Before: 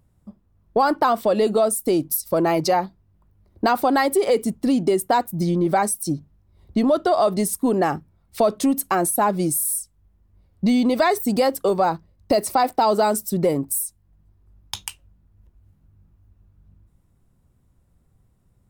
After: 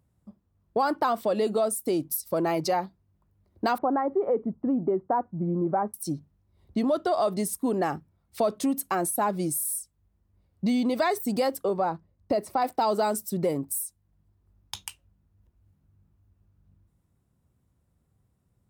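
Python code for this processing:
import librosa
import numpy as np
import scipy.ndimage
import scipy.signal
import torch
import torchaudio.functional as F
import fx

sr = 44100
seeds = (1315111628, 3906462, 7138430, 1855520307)

y = fx.lowpass(x, sr, hz=1300.0, slope=24, at=(3.78, 5.94))
y = fx.high_shelf(y, sr, hz=3100.0, db=-12.0, at=(11.64, 12.62))
y = scipy.signal.sosfilt(scipy.signal.butter(2, 60.0, 'highpass', fs=sr, output='sos'), y)
y = F.gain(torch.from_numpy(y), -6.5).numpy()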